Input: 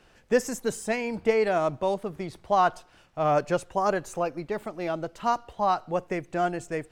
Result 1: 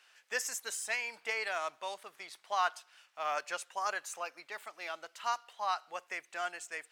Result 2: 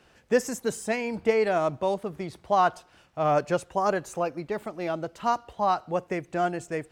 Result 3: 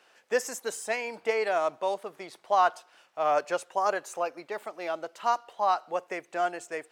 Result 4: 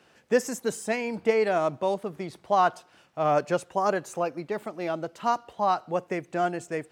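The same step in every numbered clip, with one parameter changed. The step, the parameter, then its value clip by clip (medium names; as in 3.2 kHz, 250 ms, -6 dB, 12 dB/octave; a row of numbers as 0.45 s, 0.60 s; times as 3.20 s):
high-pass, cutoff frequency: 1.5 kHz, 46 Hz, 550 Hz, 140 Hz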